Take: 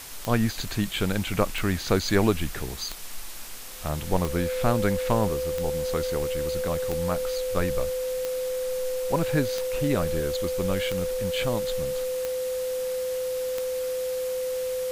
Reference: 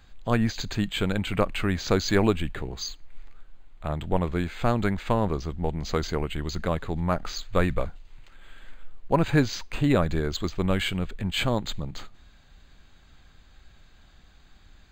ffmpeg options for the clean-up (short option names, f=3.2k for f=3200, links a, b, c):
-af "adeclick=t=4,bandreject=f=510:w=30,afwtdn=0.01,asetnsamples=n=441:p=0,asendcmd='5.3 volume volume 4dB',volume=0dB"